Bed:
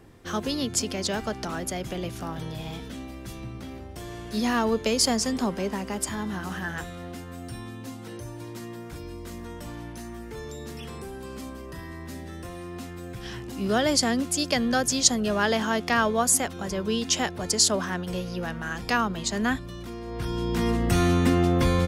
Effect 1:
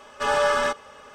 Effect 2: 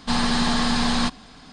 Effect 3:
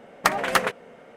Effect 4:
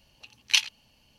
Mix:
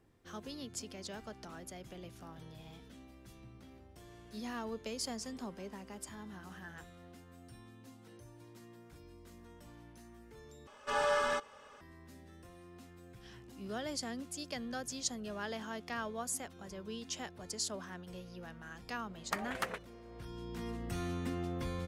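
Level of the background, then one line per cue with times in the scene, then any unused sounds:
bed −17 dB
0:10.67: overwrite with 1 −10 dB
0:19.07: mix in 3 −16.5 dB
not used: 2, 4

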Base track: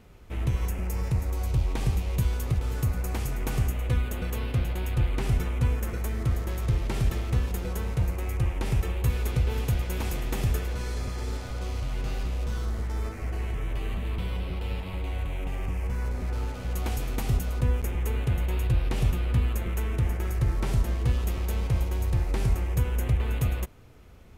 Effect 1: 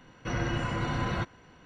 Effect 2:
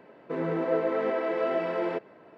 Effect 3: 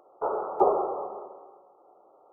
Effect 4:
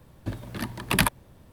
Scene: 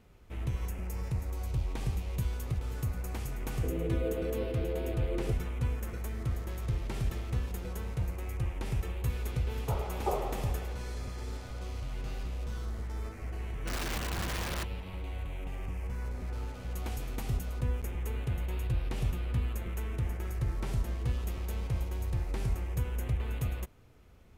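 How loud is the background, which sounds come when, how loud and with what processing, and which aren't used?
base track −7 dB
0:03.33: mix in 2 −5 dB + Butterworth low-pass 540 Hz
0:09.46: mix in 3 −10.5 dB
0:13.40: mix in 1 −6 dB + wrap-around overflow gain 25.5 dB
not used: 4

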